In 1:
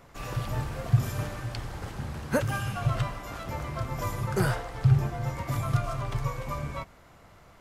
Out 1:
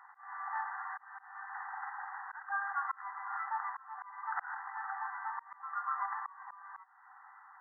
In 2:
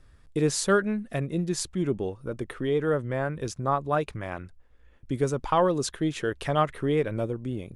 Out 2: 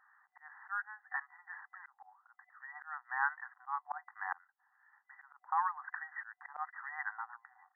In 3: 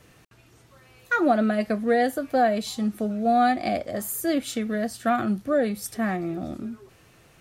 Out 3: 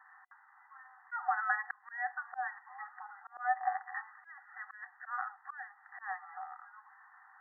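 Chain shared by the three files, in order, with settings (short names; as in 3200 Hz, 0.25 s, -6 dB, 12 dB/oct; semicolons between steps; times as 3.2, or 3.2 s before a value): FFT band-pass 740–2000 Hz; auto swell 0.396 s; gain +4 dB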